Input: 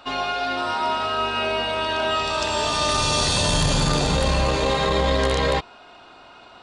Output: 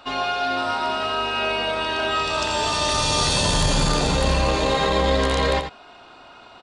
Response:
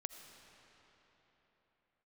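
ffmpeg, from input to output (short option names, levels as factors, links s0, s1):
-af "aecho=1:1:86:0.376"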